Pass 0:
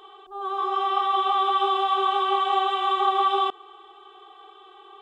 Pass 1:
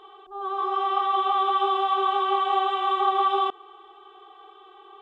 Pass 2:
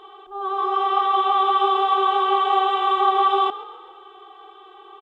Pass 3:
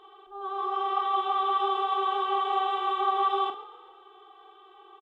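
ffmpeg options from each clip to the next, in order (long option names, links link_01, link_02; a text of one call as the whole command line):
ffmpeg -i in.wav -af "highshelf=frequency=4400:gain=-10" out.wav
ffmpeg -i in.wav -filter_complex "[0:a]asplit=5[link_01][link_02][link_03][link_04][link_05];[link_02]adelay=132,afreqshift=32,volume=-16dB[link_06];[link_03]adelay=264,afreqshift=64,volume=-22.9dB[link_07];[link_04]adelay=396,afreqshift=96,volume=-29.9dB[link_08];[link_05]adelay=528,afreqshift=128,volume=-36.8dB[link_09];[link_01][link_06][link_07][link_08][link_09]amix=inputs=5:normalize=0,volume=4dB" out.wav
ffmpeg -i in.wav -filter_complex "[0:a]asplit=2[link_01][link_02];[link_02]adelay=43,volume=-9dB[link_03];[link_01][link_03]amix=inputs=2:normalize=0,volume=-8.5dB" out.wav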